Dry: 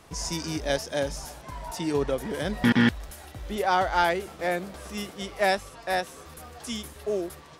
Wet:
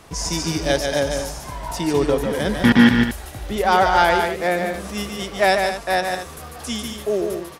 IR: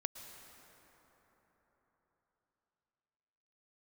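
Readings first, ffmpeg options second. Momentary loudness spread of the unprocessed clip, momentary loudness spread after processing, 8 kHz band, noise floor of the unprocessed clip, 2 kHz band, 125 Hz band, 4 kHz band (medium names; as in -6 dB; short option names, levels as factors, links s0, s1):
17 LU, 14 LU, +8.0 dB, -48 dBFS, +8.0 dB, +7.5 dB, +8.0 dB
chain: -af "aecho=1:1:145.8|221.6:0.562|0.282,volume=2.11"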